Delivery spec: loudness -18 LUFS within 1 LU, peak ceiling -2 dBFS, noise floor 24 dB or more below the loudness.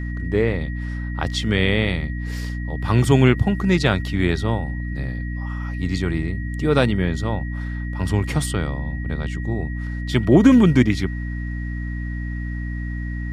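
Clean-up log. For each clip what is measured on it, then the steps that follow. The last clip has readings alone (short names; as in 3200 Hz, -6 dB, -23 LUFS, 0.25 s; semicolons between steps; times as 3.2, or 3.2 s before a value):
hum 60 Hz; harmonics up to 300 Hz; hum level -24 dBFS; steady tone 1900 Hz; tone level -37 dBFS; loudness -21.5 LUFS; peak -2.0 dBFS; loudness target -18.0 LUFS
-> notches 60/120/180/240/300 Hz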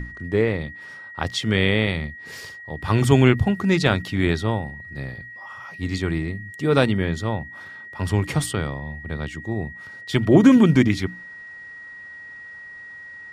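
hum none; steady tone 1900 Hz; tone level -37 dBFS
-> notch 1900 Hz, Q 30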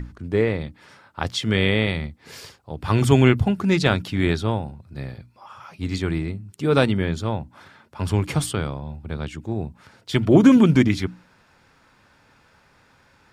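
steady tone none; loudness -21.0 LUFS; peak -2.5 dBFS; loudness target -18.0 LUFS
-> gain +3 dB; limiter -2 dBFS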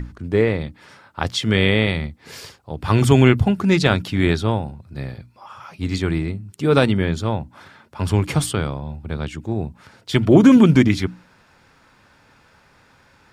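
loudness -18.5 LUFS; peak -2.0 dBFS; noise floor -55 dBFS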